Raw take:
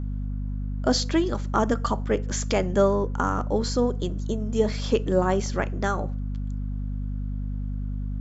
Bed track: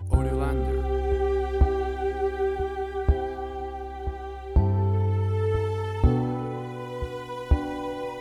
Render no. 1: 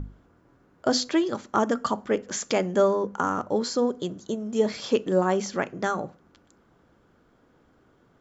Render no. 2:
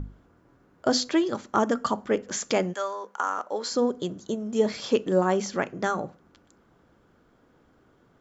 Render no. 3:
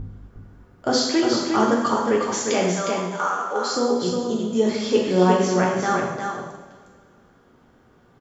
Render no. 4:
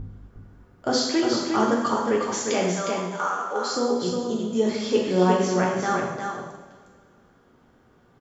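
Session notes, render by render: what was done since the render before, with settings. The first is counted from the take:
hum notches 50/100/150/200/250 Hz
2.72–3.70 s: high-pass 1.2 kHz -> 480 Hz
delay 359 ms -5.5 dB; two-slope reverb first 0.92 s, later 2.7 s, from -18 dB, DRR -2.5 dB
trim -2.5 dB

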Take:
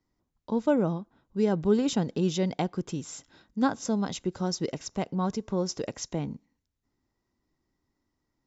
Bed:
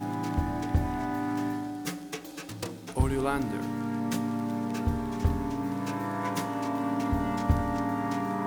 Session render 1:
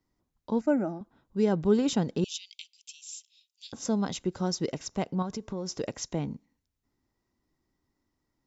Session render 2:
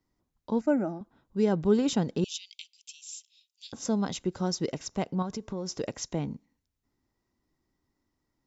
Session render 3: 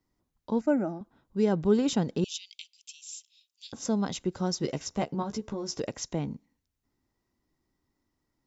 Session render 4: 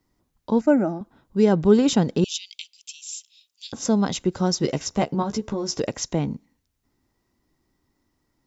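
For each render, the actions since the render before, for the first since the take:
0.61–1.01 s: static phaser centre 700 Hz, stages 8; 2.24–3.73 s: steep high-pass 2.5 kHz 72 dB/octave; 5.22–5.76 s: compression, threshold -30 dBFS
no audible change
4.59–5.80 s: doubling 14 ms -4.5 dB
trim +7.5 dB

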